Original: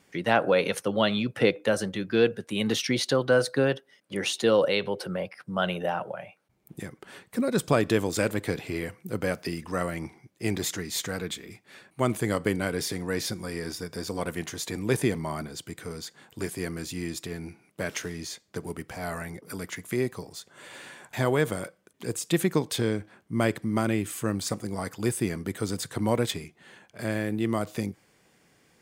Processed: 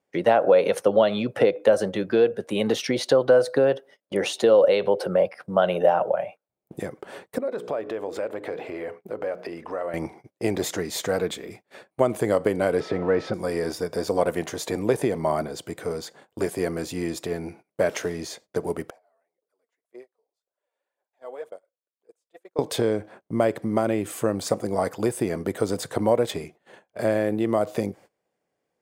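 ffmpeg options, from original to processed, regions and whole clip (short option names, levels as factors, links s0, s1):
-filter_complex "[0:a]asettb=1/sr,asplit=3[s0][s1][s2];[s0]atrim=end=7.384[s3];[s1]atrim=start=7.38:end=9.94,asetpts=PTS-STARTPTS,afade=t=in:d=0.004:c=qsin,afade=t=out:st=2.556:d=0.004:c=qsin,bass=f=250:g=-11,treble=f=4000:g=-14,bandreject=f=60:t=h:w=6,bandreject=f=120:t=h:w=6,bandreject=f=180:t=h:w=6,bandreject=f=240:t=h:w=6,bandreject=f=300:t=h:w=6,bandreject=f=360:t=h:w=6,bandreject=f=420:t=h:w=6,bandreject=f=480:t=h:w=6,acompressor=threshold=0.0141:ratio=4:attack=3.2:release=140:knee=1:detection=peak[s4];[s2]atrim=start=9.936[s5];[s3][s4]acrossfade=d=0.004:c1=hsin:c2=qsin[s6];[s6][s5]acrossfade=d=0.004:c1=qsin:c2=hsin,asettb=1/sr,asplit=3[s7][s8][s9];[s7]atrim=end=12.804[s10];[s8]atrim=start=12.8:end=13.34,asetpts=PTS-STARTPTS,afade=t=in:d=0.004:c=qsin,afade=t=out:st=0.536:d=0.004:c=qsin,aeval=exprs='val(0)+0.5*0.00944*sgn(val(0))':c=same,lowpass=2500,aeval=exprs='val(0)+0.00355*sin(2*PI*1300*n/s)':c=same[s11];[s9]atrim=start=13.336[s12];[s10][s11]acrossfade=d=0.004:c1=hsin:c2=qsin[s13];[s13][s12]acrossfade=d=0.004:c1=qsin:c2=hsin,asettb=1/sr,asplit=3[s14][s15][s16];[s14]atrim=end=18.904[s17];[s15]atrim=start=18.9:end=22.59,asetpts=PTS-STARTPTS,afade=t=in:d=0.004:c=qsin,afade=t=out:st=3.686:d=0.004:c=qsin,bandpass=f=490:t=q:w=1.2,aderivative,aphaser=in_gain=1:out_gain=1:delay=4.5:decay=0.54:speed=1.9:type=sinusoidal[s18];[s16]atrim=start=22.586[s19];[s17][s18]acrossfade=d=0.004:c1=hsin:c2=qsin[s20];[s20][s19]acrossfade=d=0.004:c1=qsin:c2=hsin,agate=range=0.0708:threshold=0.00316:ratio=16:detection=peak,acompressor=threshold=0.0562:ratio=5,equalizer=f=590:t=o:w=1.6:g=14"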